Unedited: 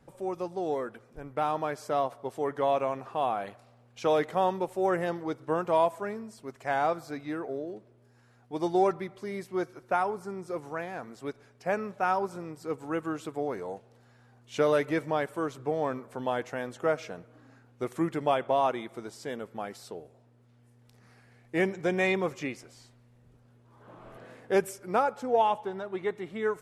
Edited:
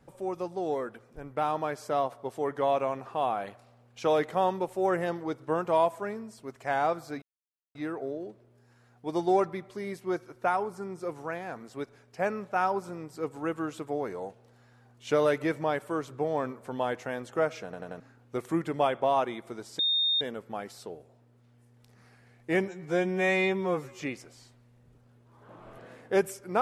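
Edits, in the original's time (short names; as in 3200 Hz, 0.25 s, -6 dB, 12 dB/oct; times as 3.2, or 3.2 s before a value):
7.22 insert silence 0.53 s
17.11 stutter in place 0.09 s, 4 plays
19.26 add tone 3670 Hz -23 dBFS 0.42 s
21.73–22.39 stretch 2×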